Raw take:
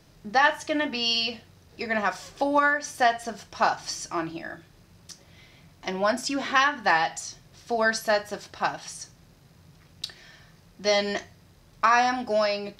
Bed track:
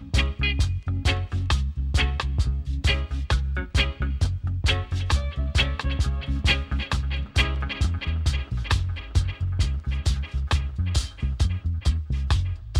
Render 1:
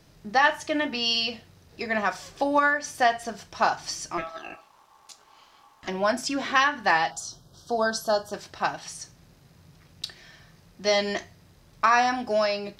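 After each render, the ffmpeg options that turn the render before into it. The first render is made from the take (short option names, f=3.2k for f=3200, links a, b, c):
-filter_complex "[0:a]asplit=3[a][b][c];[a]afade=t=out:st=4.17:d=0.02[d];[b]aeval=exprs='val(0)*sin(2*PI*980*n/s)':c=same,afade=t=in:st=4.17:d=0.02,afade=t=out:st=5.87:d=0.02[e];[c]afade=t=in:st=5.87:d=0.02[f];[d][e][f]amix=inputs=3:normalize=0,asplit=3[g][h][i];[g]afade=t=out:st=7.1:d=0.02[j];[h]asuperstop=centerf=2200:order=8:qfactor=1.4,afade=t=in:st=7.1:d=0.02,afade=t=out:st=8.32:d=0.02[k];[i]afade=t=in:st=8.32:d=0.02[l];[j][k][l]amix=inputs=3:normalize=0"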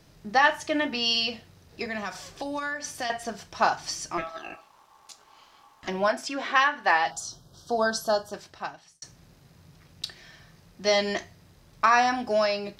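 -filter_complex "[0:a]asettb=1/sr,asplit=3[a][b][c];[a]atrim=end=1.864[d];[b]atrim=start=1.86:end=3.1,asetpts=PTS-STARTPTS,afade=t=in:d=0.004:c=qsin,afade=t=out:st=1.236:d=0.004:c=qsin,acrossover=split=180|3000[e][f][g];[f]acompressor=threshold=-33dB:ratio=3:attack=3.2:release=140:knee=2.83:detection=peak[h];[e][h][g]amix=inputs=3:normalize=0[i];[c]atrim=start=3.096[j];[d][i]acrossfade=d=0.004:c1=hsin:c2=qsin[k];[k][j]acrossfade=d=0.004:c1=qsin:c2=hsin,asettb=1/sr,asplit=3[l][m][n];[l]atrim=end=6.084[o];[m]atrim=start=6.08:end=7.06,asetpts=PTS-STARTPTS,afade=t=in:d=0.004:c=qsin,afade=t=out:st=0.976:d=0.004:c=qsin,bass=f=250:g=-14,treble=f=4k:g=-6[p];[n]atrim=start=7.056[q];[o][p]acrossfade=d=0.004:c1=hsin:c2=qsin[r];[r][q]acrossfade=d=0.004:c1=qsin:c2=hsin,asplit=2[s][t];[s]atrim=end=9.02,asetpts=PTS-STARTPTS,afade=t=out:st=8.06:d=0.96[u];[t]atrim=start=9.02,asetpts=PTS-STARTPTS,afade=t=in:d=0.004:c=hsin[v];[u][v]concat=n=2:v=0:a=1"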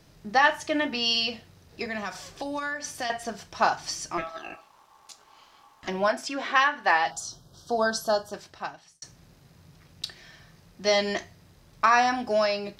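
-af anull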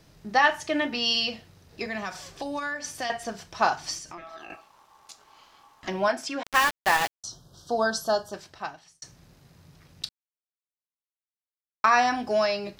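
-filter_complex "[0:a]asettb=1/sr,asplit=3[a][b][c];[a]atrim=end=3.984[d];[b]atrim=start=3.98:end=4.5,asetpts=PTS-STARTPTS,afade=t=in:d=0.004:c=qsin,afade=t=out:st=0.516:d=0.004:c=qsin,acompressor=threshold=-38dB:ratio=6:attack=3.2:release=140:knee=1:detection=peak[e];[c]atrim=start=4.496[f];[d][e]acrossfade=d=0.004:c1=hsin:c2=qsin[g];[g][f]acrossfade=d=0.004:c1=qsin:c2=hsin,asettb=1/sr,asplit=3[h][i][j];[h]atrim=end=6.434[k];[i]atrim=start=6.43:end=7.24,asetpts=PTS-STARTPTS,afade=t=in:d=0.004:c=qsin,afade=t=out:st=0.806:d=0.004:c=qsin,aeval=exprs='val(0)*gte(abs(val(0)),0.0668)':c=same[l];[j]atrim=start=7.236[m];[k][l]acrossfade=d=0.004:c1=hsin:c2=qsin[n];[n][m]acrossfade=d=0.004:c1=qsin:c2=hsin,asplit=3[o][p][q];[o]atrim=end=10.09,asetpts=PTS-STARTPTS,afade=t=out:st=10.086:d=0.004:c=hsin[r];[p]atrim=start=10.09:end=11.84,asetpts=PTS-STARTPTS,volume=0[s];[q]atrim=start=11.84,asetpts=PTS-STARTPTS,afade=t=in:d=0.004:c=hsin[t];[r][s][t]concat=n=3:v=0:a=1"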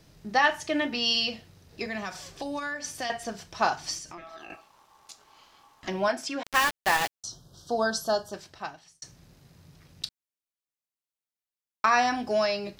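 -af "equalizer=f=1.1k:t=o:w=2:g=-2.5"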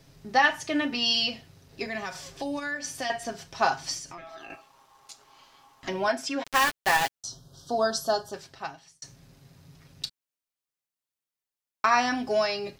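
-af "aecho=1:1:7.4:0.47"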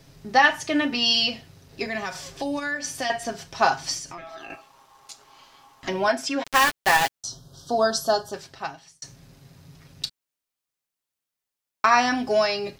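-af "volume=4dB"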